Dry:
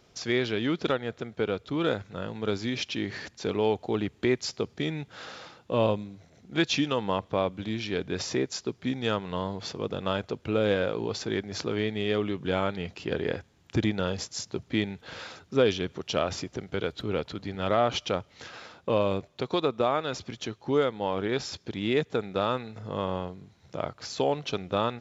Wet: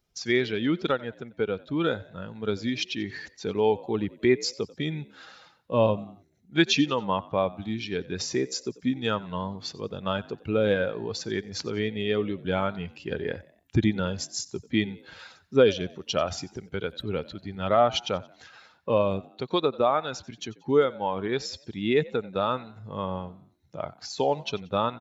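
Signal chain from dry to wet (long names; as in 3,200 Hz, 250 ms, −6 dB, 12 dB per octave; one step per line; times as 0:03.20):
spectral dynamics exaggerated over time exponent 1.5
echo with shifted repeats 91 ms, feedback 41%, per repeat +59 Hz, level −21 dB
level +5.5 dB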